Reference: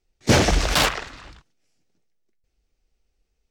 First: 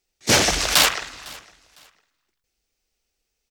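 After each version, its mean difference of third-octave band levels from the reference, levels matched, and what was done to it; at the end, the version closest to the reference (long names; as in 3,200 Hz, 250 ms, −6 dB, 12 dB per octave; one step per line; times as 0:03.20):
5.5 dB: spectral tilt +2.5 dB per octave
on a send: repeating echo 505 ms, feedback 25%, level −23 dB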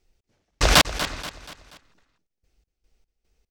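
19.0 dB: gate pattern "x..x.x.x." 74 BPM −60 dB
on a send: repeating echo 240 ms, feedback 44%, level −13 dB
on the sum: level +5 dB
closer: first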